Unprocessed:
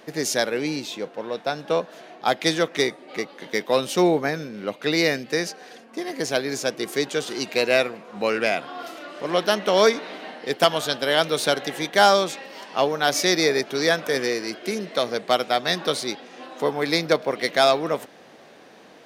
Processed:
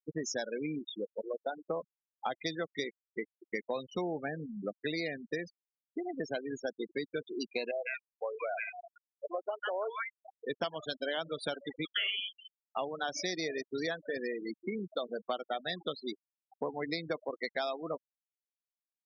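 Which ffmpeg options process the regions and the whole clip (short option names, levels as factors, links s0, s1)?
-filter_complex "[0:a]asettb=1/sr,asplit=3[s0][s1][s2];[s0]atrim=end=7.714[s3];[s1]atrim=start=7.71:end=10.26,asetpts=PTS-STARTPTS,afade=t=in:d=0.004:c=qsin,afade=t=out:st=2.546:d=0.004:c=qsin,highpass=570,lowpass=2400,acrossover=split=1100[s4][s5];[s5]adelay=150[s6];[s4][s6]amix=inputs=2:normalize=0,atrim=end_sample=112455[s7];[s2]atrim=start=10.256[s8];[s3][s7]acrossfade=d=0.004:c1=hsin:c2=qsin[s9];[s9][s8]acrossfade=d=0.004:c1=qsin:c2=hsin,asettb=1/sr,asplit=3[s10][s11][s12];[s10]atrim=end=11.854[s13];[s11]atrim=start=11.85:end=12.51,asetpts=PTS-STARTPTS,afade=t=in:d=0.004:c=qsin,afade=t=out:st=0.656:d=0.004:c=qsin,asplit=2[s14][s15];[s15]adelay=40,volume=0.447[s16];[s14][s16]amix=inputs=2:normalize=0,atrim=end_sample=29106,lowpass=f=3100:t=q:w=0.5098,lowpass=f=3100:t=q:w=0.6013,lowpass=f=3100:t=q:w=0.9,lowpass=f=3100:t=q:w=2.563,afreqshift=-3600[s17];[s12]atrim=start=12.506[s18];[s13][s17]acrossfade=d=0.004:c1=hsin:c2=qsin[s19];[s19][s18]acrossfade=d=0.004:c1=qsin:c2=hsin,afftfilt=real='re*gte(hypot(re,im),0.112)':imag='im*gte(hypot(re,im),0.112)':win_size=1024:overlap=0.75,equalizer=f=410:w=2.7:g=-3,acompressor=threshold=0.0355:ratio=6,volume=0.668"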